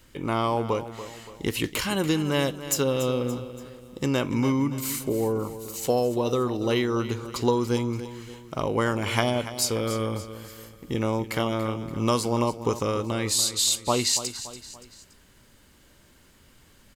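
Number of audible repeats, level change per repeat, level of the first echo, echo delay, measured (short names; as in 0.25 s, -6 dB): 3, -7.0 dB, -13.0 dB, 0.286 s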